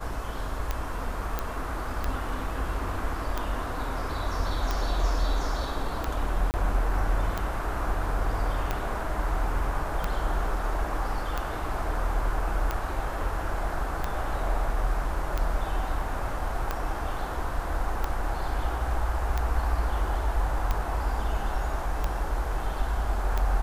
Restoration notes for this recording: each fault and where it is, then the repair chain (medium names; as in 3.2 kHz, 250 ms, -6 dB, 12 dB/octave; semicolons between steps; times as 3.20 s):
tick 45 rpm -14 dBFS
1.39 s: pop -14 dBFS
6.51–6.54 s: dropout 29 ms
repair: de-click; interpolate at 6.51 s, 29 ms